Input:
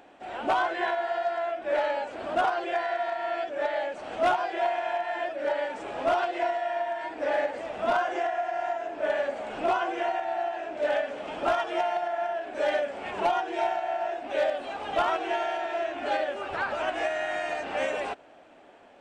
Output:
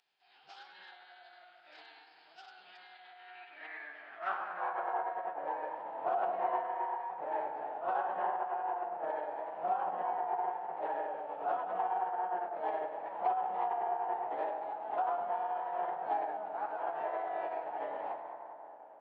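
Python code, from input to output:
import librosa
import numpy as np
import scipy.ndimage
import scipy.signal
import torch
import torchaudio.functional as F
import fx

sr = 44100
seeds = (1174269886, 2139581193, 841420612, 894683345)

y = fx.filter_sweep_bandpass(x, sr, from_hz=5300.0, to_hz=800.0, start_s=2.84, end_s=4.85, q=3.6)
y = fx.echo_tape(y, sr, ms=101, feedback_pct=86, wet_db=-7.0, lp_hz=4500.0, drive_db=12.0, wow_cents=34)
y = fx.pitch_keep_formants(y, sr, semitones=-11.0)
y = F.gain(torch.from_numpy(y), -2.5).numpy()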